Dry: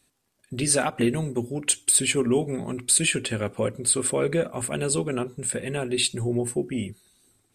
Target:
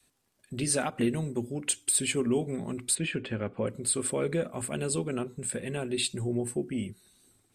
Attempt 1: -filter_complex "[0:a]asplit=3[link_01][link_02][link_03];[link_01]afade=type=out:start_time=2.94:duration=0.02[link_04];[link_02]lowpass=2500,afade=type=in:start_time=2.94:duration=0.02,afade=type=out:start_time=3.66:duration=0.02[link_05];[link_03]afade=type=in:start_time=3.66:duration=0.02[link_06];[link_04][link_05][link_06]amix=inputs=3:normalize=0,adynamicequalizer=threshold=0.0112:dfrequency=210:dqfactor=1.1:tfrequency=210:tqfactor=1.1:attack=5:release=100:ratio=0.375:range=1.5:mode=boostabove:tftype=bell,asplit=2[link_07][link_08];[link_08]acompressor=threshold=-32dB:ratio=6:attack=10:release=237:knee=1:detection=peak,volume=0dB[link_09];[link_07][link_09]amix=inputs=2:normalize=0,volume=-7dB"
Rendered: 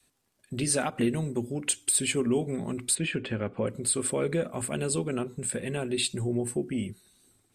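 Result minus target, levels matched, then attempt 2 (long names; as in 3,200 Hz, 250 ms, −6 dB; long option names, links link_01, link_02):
downward compressor: peak gain reduction −9.5 dB
-filter_complex "[0:a]asplit=3[link_01][link_02][link_03];[link_01]afade=type=out:start_time=2.94:duration=0.02[link_04];[link_02]lowpass=2500,afade=type=in:start_time=2.94:duration=0.02,afade=type=out:start_time=3.66:duration=0.02[link_05];[link_03]afade=type=in:start_time=3.66:duration=0.02[link_06];[link_04][link_05][link_06]amix=inputs=3:normalize=0,adynamicequalizer=threshold=0.0112:dfrequency=210:dqfactor=1.1:tfrequency=210:tqfactor=1.1:attack=5:release=100:ratio=0.375:range=1.5:mode=boostabove:tftype=bell,asplit=2[link_07][link_08];[link_08]acompressor=threshold=-43.5dB:ratio=6:attack=10:release=237:knee=1:detection=peak,volume=0dB[link_09];[link_07][link_09]amix=inputs=2:normalize=0,volume=-7dB"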